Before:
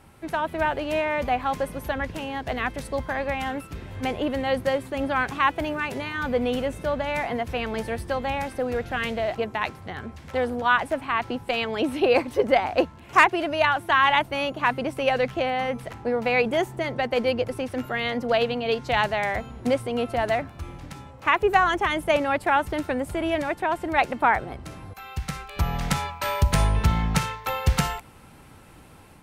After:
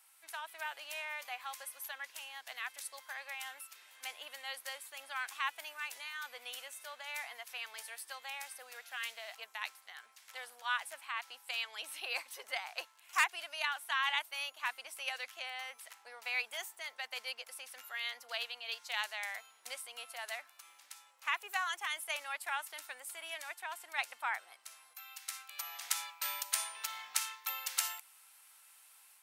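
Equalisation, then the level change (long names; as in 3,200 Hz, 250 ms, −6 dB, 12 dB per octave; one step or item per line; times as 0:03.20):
Chebyshev high-pass filter 910 Hz, order 2
first difference
0.0 dB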